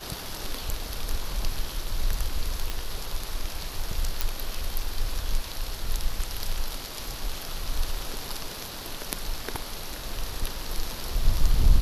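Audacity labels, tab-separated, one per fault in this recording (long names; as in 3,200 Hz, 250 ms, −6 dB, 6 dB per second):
2.700000	2.700000	click −14 dBFS
4.210000	4.210000	click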